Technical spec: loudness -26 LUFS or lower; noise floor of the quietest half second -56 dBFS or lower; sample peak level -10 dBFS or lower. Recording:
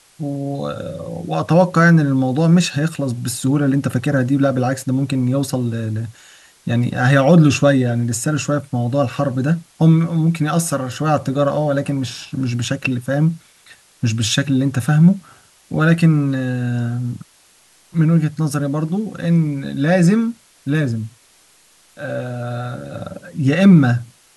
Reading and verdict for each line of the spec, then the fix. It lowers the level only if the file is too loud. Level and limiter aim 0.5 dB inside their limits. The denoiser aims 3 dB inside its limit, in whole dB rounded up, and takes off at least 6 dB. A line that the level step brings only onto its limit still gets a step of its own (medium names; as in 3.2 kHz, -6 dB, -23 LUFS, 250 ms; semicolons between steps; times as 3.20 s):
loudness -17.5 LUFS: fail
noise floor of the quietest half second -53 dBFS: fail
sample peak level -2.0 dBFS: fail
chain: trim -9 dB